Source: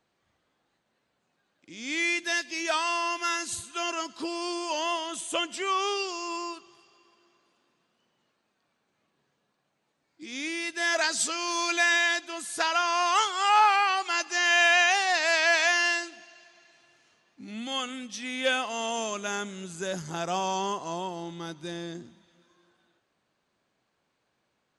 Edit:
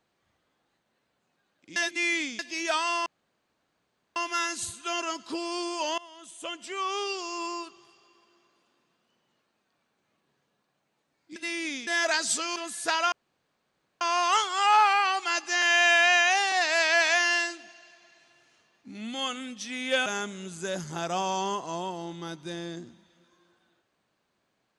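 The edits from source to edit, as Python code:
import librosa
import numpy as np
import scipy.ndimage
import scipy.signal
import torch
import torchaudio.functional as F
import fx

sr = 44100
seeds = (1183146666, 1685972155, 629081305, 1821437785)

y = fx.edit(x, sr, fx.reverse_span(start_s=1.76, length_s=0.63),
    fx.insert_room_tone(at_s=3.06, length_s=1.1),
    fx.fade_in_from(start_s=4.88, length_s=1.39, floor_db=-22.5),
    fx.reverse_span(start_s=10.26, length_s=0.51),
    fx.cut(start_s=11.46, length_s=0.82),
    fx.insert_room_tone(at_s=12.84, length_s=0.89),
    fx.stretch_span(start_s=14.45, length_s=0.6, factor=1.5),
    fx.cut(start_s=18.59, length_s=0.65), tone=tone)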